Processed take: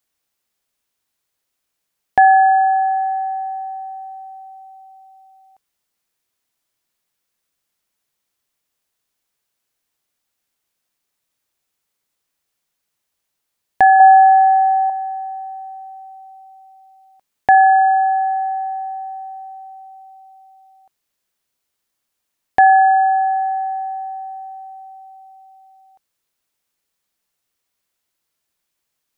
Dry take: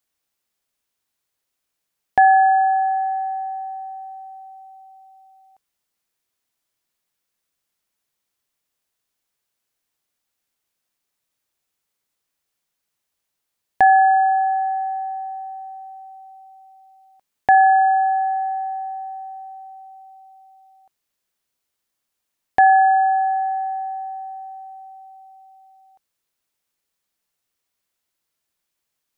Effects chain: 14–14.9 bell 420 Hz +13 dB 1.4 oct; gain +2.5 dB

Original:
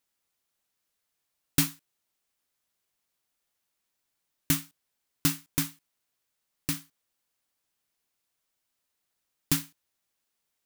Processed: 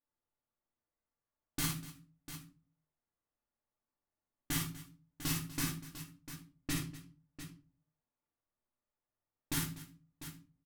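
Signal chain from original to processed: low-pass opened by the level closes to 1100 Hz, open at -26 dBFS; soft clip -21 dBFS, distortion -11 dB; level quantiser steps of 17 dB; tapped delay 55/244/698 ms -4.5/-17/-12 dB; shoebox room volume 180 m³, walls furnished, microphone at 2.4 m; gain -2.5 dB

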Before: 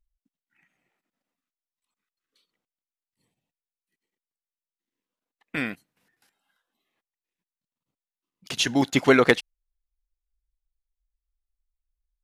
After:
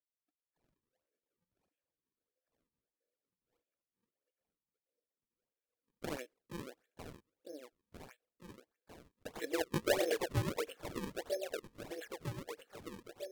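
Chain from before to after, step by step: repeated pitch sweeps +9.5 st, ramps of 1.033 s; compressor 4:1, threshold -22 dBFS, peak gain reduction 8.5 dB; vowel filter e; speaker cabinet 250–5700 Hz, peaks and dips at 330 Hz +7 dB, 680 Hz +10 dB, 1300 Hz +4 dB; echo with dull and thin repeats by turns 0.437 s, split 970 Hz, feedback 80%, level -2.5 dB; decimation with a swept rate 33×, swing 160% 1.7 Hz; speed mistake 48 kHz file played as 44.1 kHz; gain -1 dB

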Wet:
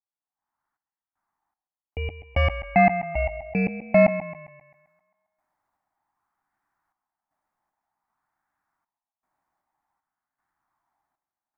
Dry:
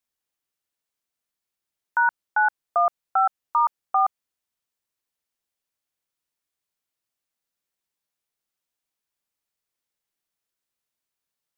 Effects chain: block floating point 7-bit; low shelf 390 Hz -9 dB; AGC gain up to 16.5 dB; random-step tremolo 2.6 Hz, depth 95%; tape echo 0.133 s, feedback 60%, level -9 dB, low-pass 1200 Hz; soft clip -2.5 dBFS, distortion -21 dB; ring modulator 1400 Hz; EQ curve 200 Hz 0 dB, 300 Hz +2 dB, 490 Hz -12 dB, 800 Hz +12 dB, 1300 Hz +6 dB, 1900 Hz 0 dB, 2800 Hz -18 dB; LFO bell 0.53 Hz 550–1600 Hz +6 dB; gain -2.5 dB

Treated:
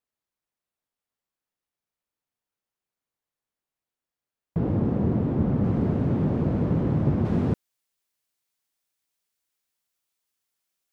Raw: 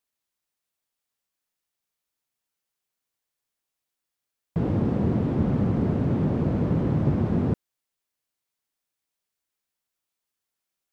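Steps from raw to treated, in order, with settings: high shelf 2200 Hz -9.5 dB, from 5.64 s -3.5 dB, from 7.25 s +4 dB

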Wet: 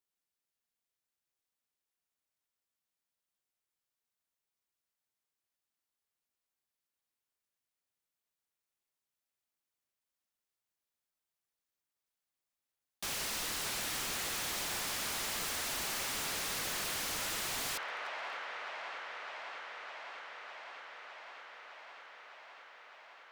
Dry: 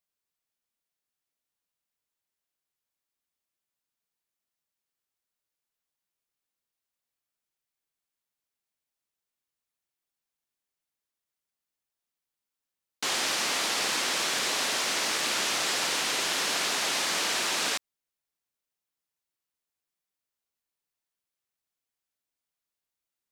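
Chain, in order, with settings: ring modulator 250 Hz; band-limited delay 0.607 s, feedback 81%, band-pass 1100 Hz, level -9 dB; wavefolder -32 dBFS

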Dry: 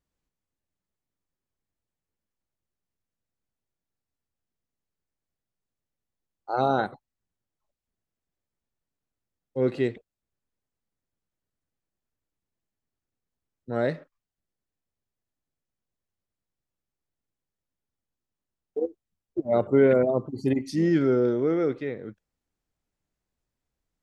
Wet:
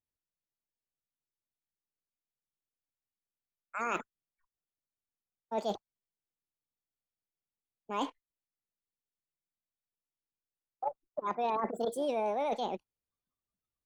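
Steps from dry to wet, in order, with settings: spectral noise reduction 18 dB; reverse; compressor 6:1, threshold -34 dBFS, peak gain reduction 18 dB; reverse; speed mistake 45 rpm record played at 78 rpm; gain +3.5 dB

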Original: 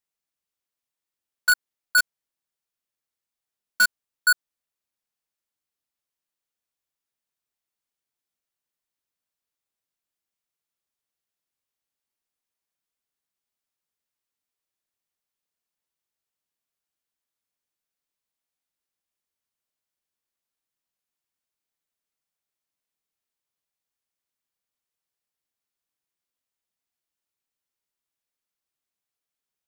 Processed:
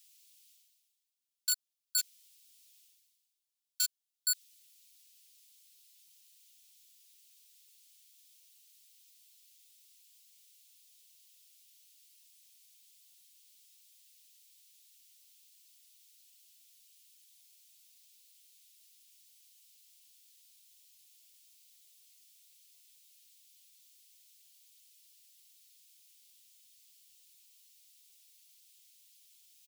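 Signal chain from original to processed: inverse Chebyshev high-pass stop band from 850 Hz, stop band 60 dB; comb 6 ms, depth 39%; reverse; upward compressor, threshold -42 dBFS; reverse; limiter -17.5 dBFS, peak gain reduction 5 dB

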